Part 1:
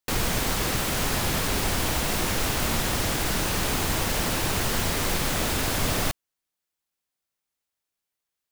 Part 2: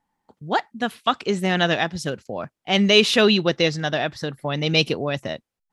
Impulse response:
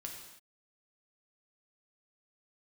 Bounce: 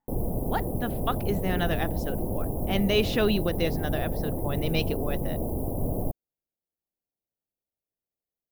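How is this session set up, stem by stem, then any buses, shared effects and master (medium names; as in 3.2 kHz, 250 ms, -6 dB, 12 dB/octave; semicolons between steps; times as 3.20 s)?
-0.5 dB, 0.00 s, no send, inverse Chebyshev band-stop 1.5–6.1 kHz, stop band 50 dB
-7.0 dB, 0.00 s, no send, none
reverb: none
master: treble shelf 2.2 kHz -8.5 dB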